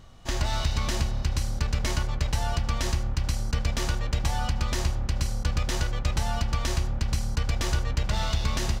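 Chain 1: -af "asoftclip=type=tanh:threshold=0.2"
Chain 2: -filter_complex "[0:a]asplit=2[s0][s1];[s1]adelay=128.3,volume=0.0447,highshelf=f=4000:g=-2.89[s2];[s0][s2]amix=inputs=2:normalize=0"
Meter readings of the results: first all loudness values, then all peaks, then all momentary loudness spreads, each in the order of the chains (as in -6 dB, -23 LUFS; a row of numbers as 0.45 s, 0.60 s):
-29.5 LUFS, -29.0 LUFS; -15.5 dBFS, -12.0 dBFS; 2 LU, 2 LU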